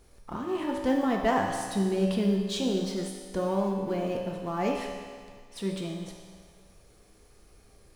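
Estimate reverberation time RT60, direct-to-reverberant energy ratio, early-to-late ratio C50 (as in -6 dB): 1.8 s, -0.5 dB, 2.5 dB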